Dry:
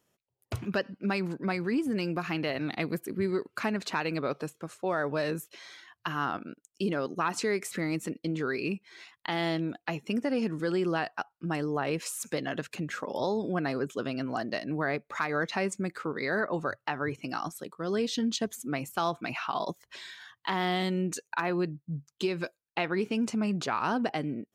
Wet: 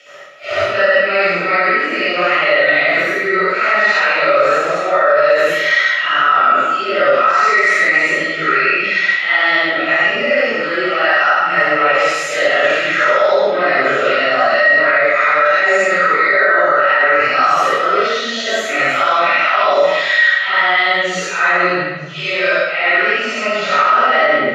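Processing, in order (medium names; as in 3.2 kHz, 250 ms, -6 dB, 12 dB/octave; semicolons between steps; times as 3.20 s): phase randomisation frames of 200 ms; frequency weighting D; reverse; compression 8:1, threshold -49 dBFS, peak gain reduction 26.5 dB; reverse; three-band isolator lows -17 dB, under 450 Hz, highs -16 dB, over 2.6 kHz; small resonant body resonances 590/1300/1900 Hz, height 17 dB, ringing for 45 ms; reverberation RT60 1.1 s, pre-delay 59 ms, DRR -7 dB; loudness maximiser +31 dB; trim -2.5 dB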